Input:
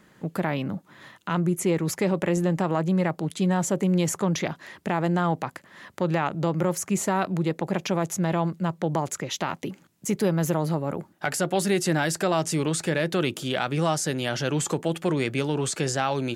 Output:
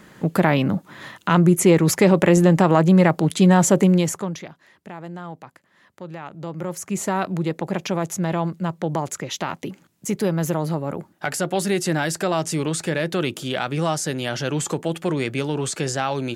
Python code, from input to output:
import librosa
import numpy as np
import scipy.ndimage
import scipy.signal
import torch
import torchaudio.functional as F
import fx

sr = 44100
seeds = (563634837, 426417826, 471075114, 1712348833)

y = fx.gain(x, sr, db=fx.line((3.81, 9.0), (4.24, -2.0), (4.5, -11.0), (6.16, -11.0), (7.1, 1.5)))